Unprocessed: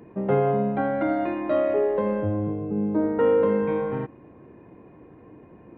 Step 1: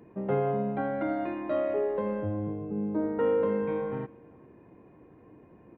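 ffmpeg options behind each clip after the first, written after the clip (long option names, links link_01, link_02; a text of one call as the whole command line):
ffmpeg -i in.wav -filter_complex "[0:a]asplit=2[link_01][link_02];[link_02]adelay=390.7,volume=-25dB,highshelf=frequency=4000:gain=-8.79[link_03];[link_01][link_03]amix=inputs=2:normalize=0,volume=-6dB" out.wav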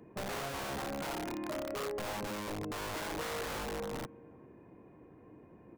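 ffmpeg -i in.wav -filter_complex "[0:a]acrossover=split=370[link_01][link_02];[link_01]aeval=exprs='(mod(44.7*val(0)+1,2)-1)/44.7':channel_layout=same[link_03];[link_02]acompressor=threshold=-41dB:ratio=5[link_04];[link_03][link_04]amix=inputs=2:normalize=0,volume=-2dB" out.wav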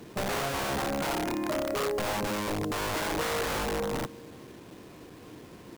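ffmpeg -i in.wav -af "acrusher=bits=9:mix=0:aa=0.000001,volume=8dB" out.wav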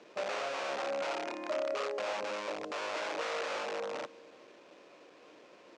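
ffmpeg -i in.wav -af "highpass=430,equalizer=frequency=570:width_type=q:width=4:gain=9,equalizer=frequency=1300:width_type=q:width=4:gain=3,equalizer=frequency=2500:width_type=q:width=4:gain=5,lowpass=frequency=6500:width=0.5412,lowpass=frequency=6500:width=1.3066,volume=-7dB" out.wav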